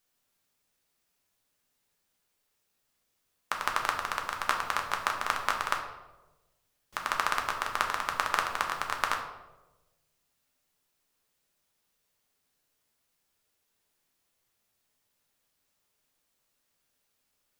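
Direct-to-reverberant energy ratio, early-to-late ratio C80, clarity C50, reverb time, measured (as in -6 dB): 1.0 dB, 9.0 dB, 7.0 dB, 1.1 s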